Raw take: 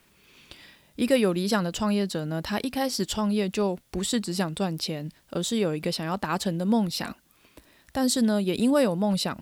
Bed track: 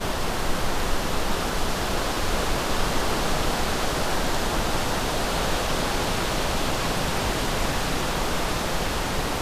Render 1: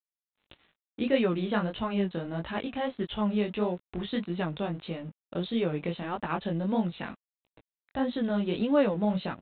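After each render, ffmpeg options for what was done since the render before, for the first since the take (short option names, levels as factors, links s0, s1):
-af "aresample=8000,aeval=exprs='sgn(val(0))*max(abs(val(0))-0.00398,0)':c=same,aresample=44100,flanger=delay=17:depth=7.1:speed=1.6"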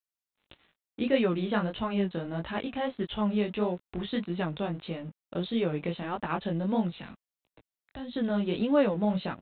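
-filter_complex "[0:a]asettb=1/sr,asplit=3[s0][s1][s2];[s0]atrim=end=6.954[s3];[s1]atrim=start=6.95:end=8.16,asetpts=PTS-STARTPTS,afade=t=in:d=0.004:c=qsin,afade=t=out:st=1.206:d=0.004:c=qsin,acrossover=split=170|3000[s4][s5][s6];[s5]acompressor=threshold=0.00562:ratio=3:attack=3.2:release=140:knee=2.83:detection=peak[s7];[s4][s7][s6]amix=inputs=3:normalize=0[s8];[s2]atrim=start=8.156[s9];[s3][s8]acrossfade=d=0.004:c1=hsin:c2=qsin[s10];[s10][s9]acrossfade=d=0.004:c1=qsin:c2=hsin"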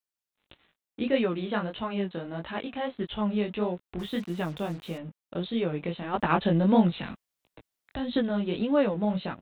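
-filter_complex "[0:a]asettb=1/sr,asplit=3[s0][s1][s2];[s0]atrim=end=1.254[s3];[s1]atrim=start=1.25:end=2.93,asetpts=PTS-STARTPTS,afade=t=in:d=0.004:c=qsin,afade=t=out:st=1.676:d=0.004:c=qsin,lowshelf=f=140:g=-7.5[s4];[s2]atrim=start=2.926[s5];[s3][s4]acrossfade=d=0.004:c1=hsin:c2=qsin[s6];[s6][s5]acrossfade=d=0.004:c1=qsin:c2=hsin,asettb=1/sr,asplit=3[s7][s8][s9];[s7]atrim=end=3.994[s10];[s8]atrim=start=3.99:end=4.98,asetpts=PTS-STARTPTS,afade=t=in:d=0.004:c=qsin,afade=t=out:st=0.986:d=0.004:c=qsin,acrusher=bits=7:mix=0:aa=0.5[s11];[s9]atrim=start=4.976[s12];[s10][s11]acrossfade=d=0.004:c1=hsin:c2=qsin[s13];[s13][s12]acrossfade=d=0.004:c1=qsin:c2=hsin,asplit=3[s14][s15][s16];[s14]afade=t=out:st=6.13:d=0.02[s17];[s15]acontrast=87,afade=t=in:st=6.13:d=0.02,afade=t=out:st=8.2:d=0.02[s18];[s16]afade=t=in:st=8.2:d=0.02[s19];[s17][s18][s19]amix=inputs=3:normalize=0"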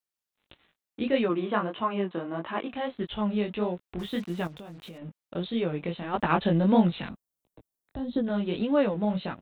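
-filter_complex "[0:a]asplit=3[s0][s1][s2];[s0]afade=t=out:st=1.28:d=0.02[s3];[s1]highpass=150,equalizer=f=340:t=q:w=4:g=6,equalizer=f=700:t=q:w=4:g=3,equalizer=f=1100:t=q:w=4:g=9,lowpass=f=3300:w=0.5412,lowpass=f=3300:w=1.3066,afade=t=in:st=1.28:d=0.02,afade=t=out:st=2.68:d=0.02[s4];[s2]afade=t=in:st=2.68:d=0.02[s5];[s3][s4][s5]amix=inputs=3:normalize=0,asettb=1/sr,asplit=3[s6][s7][s8];[s6]atrim=end=4.474[s9];[s7]atrim=start=4.47:end=5.02,asetpts=PTS-STARTPTS,afade=t=in:d=0.004:c=qsin,afade=t=out:st=0.546:d=0.004:c=qsin,acompressor=threshold=0.01:ratio=5:attack=3.2:release=140:knee=1:detection=peak[s10];[s8]atrim=start=5.016[s11];[s9][s10]acrossfade=d=0.004:c1=hsin:c2=qsin[s12];[s12][s11]acrossfade=d=0.004:c1=qsin:c2=hsin,asettb=1/sr,asplit=3[s13][s14][s15];[s13]atrim=end=7.094[s16];[s14]atrim=start=7.09:end=8.27,asetpts=PTS-STARTPTS,afade=t=in:d=0.004:c=qsin,afade=t=out:st=1.176:d=0.004:c=qsin,equalizer=f=2400:t=o:w=2.3:g=-14.5[s17];[s15]atrim=start=8.266[s18];[s16][s17]acrossfade=d=0.004:c1=hsin:c2=qsin[s19];[s19][s18]acrossfade=d=0.004:c1=qsin:c2=hsin"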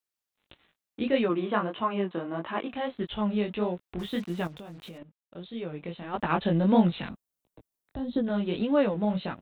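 -filter_complex "[0:a]asplit=2[s0][s1];[s0]atrim=end=5.03,asetpts=PTS-STARTPTS,afade=t=out:st=5.026:d=0.004:c=hsin:silence=0.141254[s2];[s1]atrim=start=5.03,asetpts=PTS-STARTPTS,afade=t=in:d=1.78:silence=0.141254[s3];[s2][s3]concat=n=2:v=0:a=1"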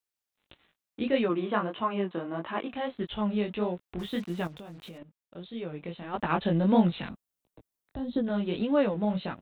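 -af "volume=0.891"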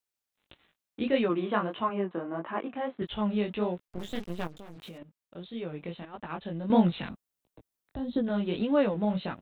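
-filter_complex "[0:a]asettb=1/sr,asplit=3[s0][s1][s2];[s0]atrim=end=1.894[s3];[s1]atrim=start=1.89:end=3.02,asetpts=PTS-STARTPTS,afade=t=in:d=0.004:c=qsin,afade=t=out:st=1.126:d=0.004:c=qsin,highpass=160,lowpass=2000[s4];[s2]atrim=start=3.016[s5];[s3][s4]acrossfade=d=0.004:c1=hsin:c2=qsin[s6];[s6][s5]acrossfade=d=0.004:c1=qsin:c2=hsin,asettb=1/sr,asplit=3[s7][s8][s9];[s7]atrim=end=3.884[s10];[s8]atrim=start=3.88:end=4.76,asetpts=PTS-STARTPTS,afade=t=in:d=0.004:c=qsin,afade=t=out:st=0.876:d=0.004:c=qsin,aeval=exprs='max(val(0),0)':c=same[s11];[s9]atrim=start=4.756[s12];[s10][s11]acrossfade=d=0.004:c1=hsin:c2=qsin[s13];[s13][s12]acrossfade=d=0.004:c1=qsin:c2=hsin,asplit=3[s14][s15][s16];[s14]atrim=end=6.052[s17];[s15]atrim=start=6.048:end=6.702,asetpts=PTS-STARTPTS,volume=0.316[s18];[s16]atrim=start=6.698[s19];[s17][s18]acrossfade=d=0.004:c1=hsin:c2=hsin[s20];[s20][s19]acrossfade=d=0.004:c1=hsin:c2=hsin"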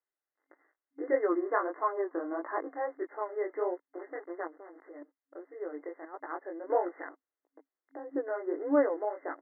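-af "afftfilt=real='re*between(b*sr/4096,270,2100)':imag='im*between(b*sr/4096,270,2100)':win_size=4096:overlap=0.75,bandreject=f=940:w=20"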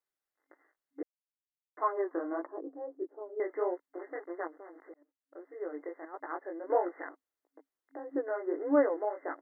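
-filter_complex "[0:a]asettb=1/sr,asplit=3[s0][s1][s2];[s0]atrim=end=2.464[s3];[s1]atrim=start=2.46:end=3.4,asetpts=PTS-STARTPTS,afade=t=in:d=0.004:c=qsin,afade=t=out:st=0.936:d=0.004:c=qsin,asuperpass=centerf=220:order=4:qfactor=0.64[s4];[s2]atrim=start=3.396[s5];[s3][s4]acrossfade=d=0.004:c1=hsin:c2=qsin[s6];[s6][s5]acrossfade=d=0.004:c1=qsin:c2=hsin,asplit=4[s7][s8][s9][s10];[s7]atrim=end=1.03,asetpts=PTS-STARTPTS,afade=t=out:st=1.026:d=0.004:c=hsin[s11];[s8]atrim=start=1.03:end=1.77,asetpts=PTS-STARTPTS,volume=0[s12];[s9]atrim=start=1.77:end=4.94,asetpts=PTS-STARTPTS,afade=t=in:d=0.004:c=hsin,afade=t=out:st=3.166:d=0.004:c=hsin[s13];[s10]atrim=start=4.94,asetpts=PTS-STARTPTS,afade=t=in:d=0.6[s14];[s11][s12][s13][s14]concat=n=4:v=0:a=1"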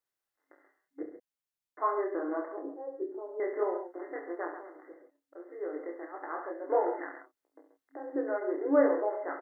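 -filter_complex "[0:a]asplit=2[s0][s1];[s1]adelay=29,volume=0.473[s2];[s0][s2]amix=inputs=2:normalize=0,asplit=2[s3][s4];[s4]aecho=0:1:46|68|132|140:0.133|0.355|0.299|0.168[s5];[s3][s5]amix=inputs=2:normalize=0"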